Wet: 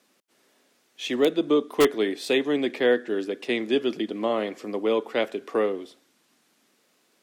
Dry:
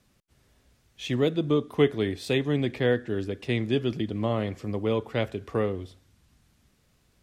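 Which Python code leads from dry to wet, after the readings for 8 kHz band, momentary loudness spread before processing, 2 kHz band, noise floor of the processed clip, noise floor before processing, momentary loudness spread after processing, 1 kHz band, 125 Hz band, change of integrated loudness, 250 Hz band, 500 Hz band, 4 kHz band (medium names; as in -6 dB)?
no reading, 7 LU, +4.0 dB, -67 dBFS, -67 dBFS, 7 LU, +4.5 dB, -16.5 dB, +2.0 dB, +1.0 dB, +3.5 dB, +4.0 dB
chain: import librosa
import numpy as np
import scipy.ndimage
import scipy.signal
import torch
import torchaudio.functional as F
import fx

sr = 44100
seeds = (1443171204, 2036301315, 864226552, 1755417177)

p1 = scipy.signal.sosfilt(scipy.signal.butter(4, 260.0, 'highpass', fs=sr, output='sos'), x)
p2 = (np.mod(10.0 ** (13.5 / 20.0) * p1 + 1.0, 2.0) - 1.0) / 10.0 ** (13.5 / 20.0)
y = p1 + (p2 * 10.0 ** (-5.0 / 20.0))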